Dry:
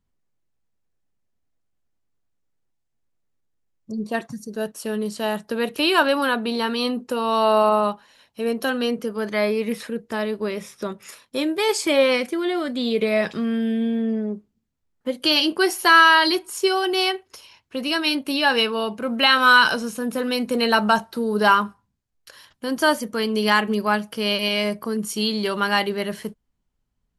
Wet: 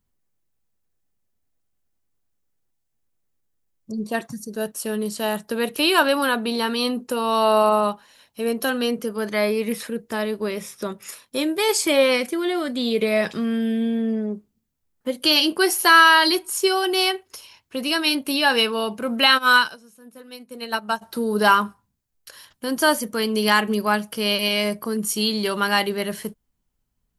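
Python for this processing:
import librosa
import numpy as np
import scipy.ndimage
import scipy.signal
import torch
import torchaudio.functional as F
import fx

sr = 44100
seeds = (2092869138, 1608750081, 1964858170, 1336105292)

y = fx.high_shelf(x, sr, hz=8700.0, db=11.5)
y = fx.upward_expand(y, sr, threshold_db=-26.0, expansion=2.5, at=(19.37, 21.01), fade=0.02)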